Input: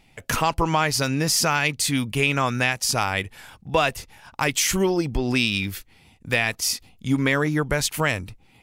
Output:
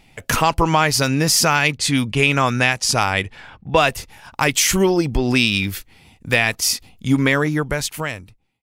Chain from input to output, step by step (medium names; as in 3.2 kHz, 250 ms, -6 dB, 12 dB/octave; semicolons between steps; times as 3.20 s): fade out at the end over 1.45 s; 1.77–3.85 s: level-controlled noise filter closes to 2.1 kHz, open at -17.5 dBFS; trim +5 dB